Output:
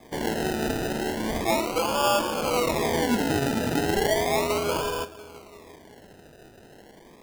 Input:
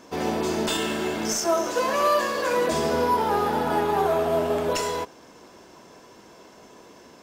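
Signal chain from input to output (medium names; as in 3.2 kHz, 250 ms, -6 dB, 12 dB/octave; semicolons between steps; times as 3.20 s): filtered feedback delay 342 ms, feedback 63%, low-pass 870 Hz, level -18 dB; decimation with a swept rate 31×, swing 60% 0.35 Hz; trim -1.5 dB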